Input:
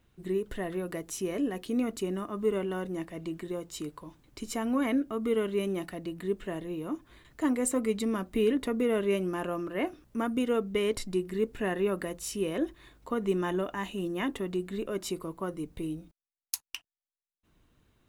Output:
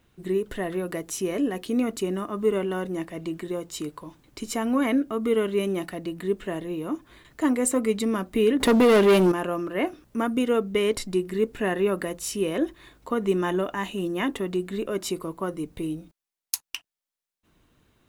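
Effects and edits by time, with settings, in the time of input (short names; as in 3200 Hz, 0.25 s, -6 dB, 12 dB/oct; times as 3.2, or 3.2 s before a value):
8.6–9.32 sample leveller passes 3
whole clip: low shelf 100 Hz -6 dB; gain +5.5 dB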